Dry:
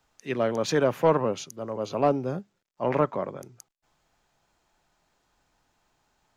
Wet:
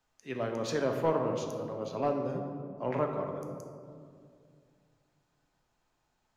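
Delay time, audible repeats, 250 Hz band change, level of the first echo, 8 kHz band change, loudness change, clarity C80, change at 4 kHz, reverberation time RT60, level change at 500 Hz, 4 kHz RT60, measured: none, none, -5.5 dB, none, n/a, -6.5 dB, 6.5 dB, -7.5 dB, 2.3 s, -6.0 dB, 1.0 s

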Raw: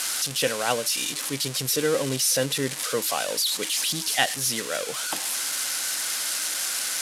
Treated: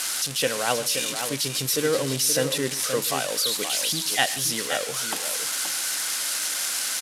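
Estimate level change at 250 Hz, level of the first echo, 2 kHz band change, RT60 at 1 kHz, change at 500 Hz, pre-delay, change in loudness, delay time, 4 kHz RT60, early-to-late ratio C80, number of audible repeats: +0.5 dB, -18.5 dB, +0.5 dB, none, +1.0 dB, none, +0.5 dB, 0.128 s, none, none, 2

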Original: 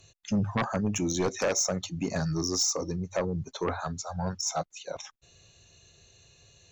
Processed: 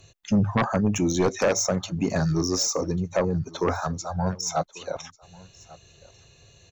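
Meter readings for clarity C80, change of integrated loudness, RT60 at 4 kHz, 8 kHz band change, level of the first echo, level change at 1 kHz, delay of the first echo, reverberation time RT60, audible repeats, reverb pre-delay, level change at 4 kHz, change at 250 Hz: none, +4.5 dB, none, +1.0 dB, -22.5 dB, +5.5 dB, 1.142 s, none, 1, none, +1.5 dB, +6.0 dB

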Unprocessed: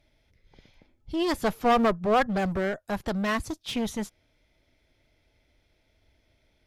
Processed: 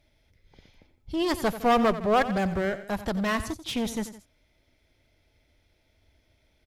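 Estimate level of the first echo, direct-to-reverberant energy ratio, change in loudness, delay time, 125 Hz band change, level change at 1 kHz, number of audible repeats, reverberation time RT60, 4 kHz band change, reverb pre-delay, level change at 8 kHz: -13.5 dB, none, +0.5 dB, 89 ms, +0.5 dB, 0.0 dB, 2, none, +1.0 dB, none, +2.0 dB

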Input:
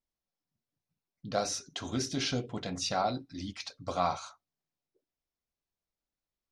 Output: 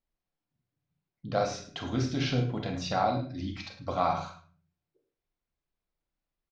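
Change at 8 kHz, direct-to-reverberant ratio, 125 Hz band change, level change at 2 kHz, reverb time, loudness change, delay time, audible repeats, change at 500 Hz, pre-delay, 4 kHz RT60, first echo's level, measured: -8.0 dB, 3.5 dB, +8.0 dB, +2.5 dB, 0.40 s, +2.5 dB, 0.106 s, 1, +3.5 dB, 31 ms, 0.35 s, -15.0 dB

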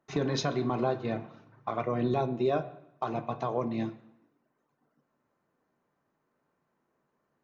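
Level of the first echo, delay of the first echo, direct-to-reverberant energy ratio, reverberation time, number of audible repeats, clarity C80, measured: none, none, 8.0 dB, 0.75 s, none, 17.0 dB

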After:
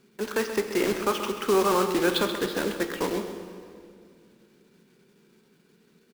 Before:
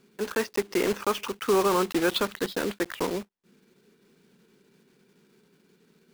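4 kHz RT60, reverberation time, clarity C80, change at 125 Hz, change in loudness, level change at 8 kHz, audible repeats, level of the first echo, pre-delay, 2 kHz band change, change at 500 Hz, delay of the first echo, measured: 1.9 s, 2.3 s, 7.0 dB, +1.5 dB, +1.0 dB, +1.0 dB, 1, -11.0 dB, 6 ms, +1.0 dB, +1.0 dB, 0.131 s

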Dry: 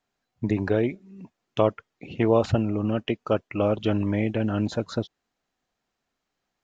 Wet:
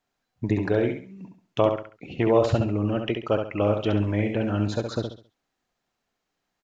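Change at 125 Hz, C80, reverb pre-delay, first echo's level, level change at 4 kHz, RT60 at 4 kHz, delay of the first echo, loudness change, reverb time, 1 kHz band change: +1.0 dB, none, none, -6.0 dB, +1.0 dB, none, 68 ms, +0.5 dB, none, +1.0 dB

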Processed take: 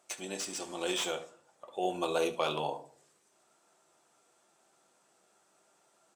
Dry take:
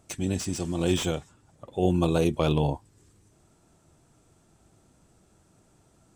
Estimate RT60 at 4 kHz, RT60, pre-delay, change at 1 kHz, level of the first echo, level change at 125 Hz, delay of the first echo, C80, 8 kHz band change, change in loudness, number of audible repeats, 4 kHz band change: 0.25 s, 0.50 s, 5 ms, -1.5 dB, -16.5 dB, -23.5 dB, 72 ms, 18.0 dB, -2.5 dB, -7.5 dB, 1, -1.5 dB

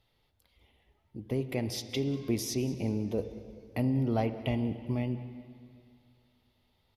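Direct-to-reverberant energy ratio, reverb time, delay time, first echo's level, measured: 9.5 dB, 2.4 s, 0.192 s, -20.0 dB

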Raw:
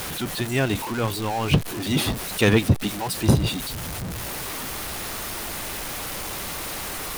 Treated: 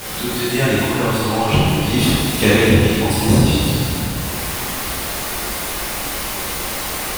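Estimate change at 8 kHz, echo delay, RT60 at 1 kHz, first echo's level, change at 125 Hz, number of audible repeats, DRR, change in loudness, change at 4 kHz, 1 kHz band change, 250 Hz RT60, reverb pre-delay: +7.5 dB, none, 2.3 s, none, +6.5 dB, none, -10.0 dB, +7.5 dB, +7.5 dB, +7.5 dB, 2.3 s, 4 ms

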